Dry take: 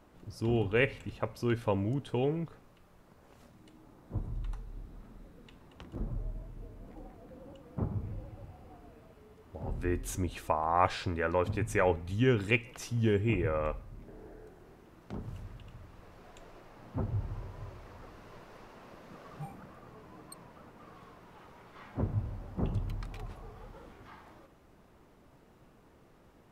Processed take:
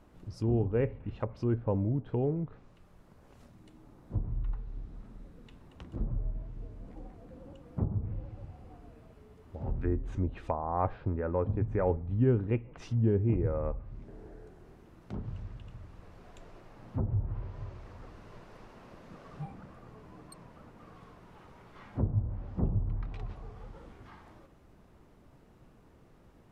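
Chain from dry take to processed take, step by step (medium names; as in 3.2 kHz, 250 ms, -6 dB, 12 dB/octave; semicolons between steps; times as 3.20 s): low-pass that closes with the level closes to 890 Hz, closed at -29.5 dBFS; bass shelf 230 Hz +6.5 dB; trim -2 dB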